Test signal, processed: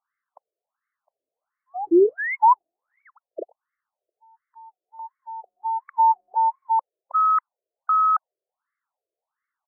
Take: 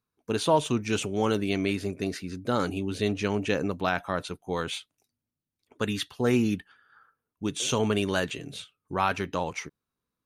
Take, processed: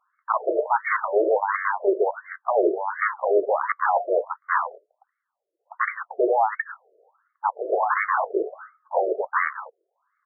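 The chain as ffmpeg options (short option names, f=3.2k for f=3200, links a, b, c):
-af "highpass=f=210:w=0.5412,highpass=f=210:w=1.3066,aresample=16000,aeval=exprs='0.299*sin(PI/2*7.94*val(0)/0.299)':c=same,aresample=44100,afftfilt=real='re*between(b*sr/1024,470*pow(1600/470,0.5+0.5*sin(2*PI*1.4*pts/sr))/1.41,470*pow(1600/470,0.5+0.5*sin(2*PI*1.4*pts/sr))*1.41)':imag='im*between(b*sr/1024,470*pow(1600/470,0.5+0.5*sin(2*PI*1.4*pts/sr))/1.41,470*pow(1600/470,0.5+0.5*sin(2*PI*1.4*pts/sr))*1.41)':win_size=1024:overlap=0.75"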